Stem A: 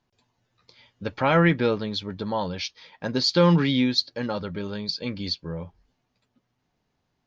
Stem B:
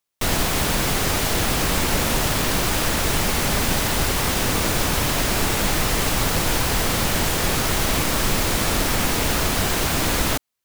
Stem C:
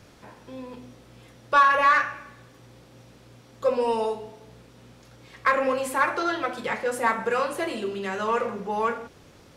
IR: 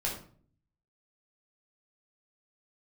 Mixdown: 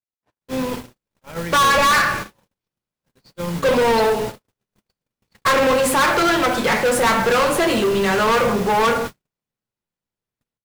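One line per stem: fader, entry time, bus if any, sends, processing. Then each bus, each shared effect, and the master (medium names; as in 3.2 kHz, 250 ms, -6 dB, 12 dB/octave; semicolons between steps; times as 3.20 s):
-11.0 dB, 0.00 s, send -11 dB, echo send -15 dB, none
-13.5 dB, 0.20 s, send -8.5 dB, no echo send, ring modulator 170 Hz
-3.0 dB, 0.00 s, no send, no echo send, waveshaping leveller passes 5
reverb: on, RT60 0.50 s, pre-delay 8 ms
echo: delay 81 ms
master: gate -25 dBFS, range -56 dB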